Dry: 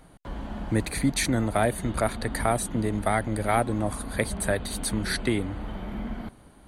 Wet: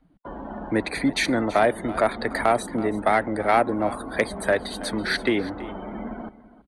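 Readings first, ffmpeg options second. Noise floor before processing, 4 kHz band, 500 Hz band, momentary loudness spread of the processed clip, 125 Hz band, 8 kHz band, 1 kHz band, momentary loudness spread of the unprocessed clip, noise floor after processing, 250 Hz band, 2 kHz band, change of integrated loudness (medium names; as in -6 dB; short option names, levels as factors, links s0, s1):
-53 dBFS, +3.0 dB, +5.5 dB, 14 LU, -7.0 dB, -6.5 dB, +5.5 dB, 11 LU, -53 dBFS, +2.0 dB, +5.5 dB, +3.5 dB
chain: -filter_complex "[0:a]afftdn=nr=22:nf=-43,acrossover=split=240 4800:gain=0.158 1 0.178[s0][s1][s2];[s0][s1][s2]amix=inputs=3:normalize=0,asoftclip=type=tanh:threshold=0.188,aecho=1:1:330:0.141,volume=2.11"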